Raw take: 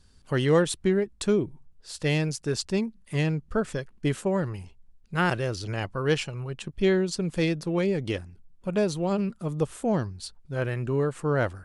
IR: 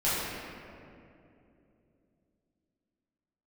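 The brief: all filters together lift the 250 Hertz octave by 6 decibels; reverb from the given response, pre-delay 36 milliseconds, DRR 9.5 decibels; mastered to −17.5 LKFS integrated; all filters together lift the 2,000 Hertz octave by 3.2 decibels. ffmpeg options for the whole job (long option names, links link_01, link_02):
-filter_complex "[0:a]equalizer=frequency=250:width_type=o:gain=9,equalizer=frequency=2000:width_type=o:gain=4,asplit=2[link_01][link_02];[1:a]atrim=start_sample=2205,adelay=36[link_03];[link_02][link_03]afir=irnorm=-1:irlink=0,volume=-21.5dB[link_04];[link_01][link_04]amix=inputs=2:normalize=0,volume=5.5dB"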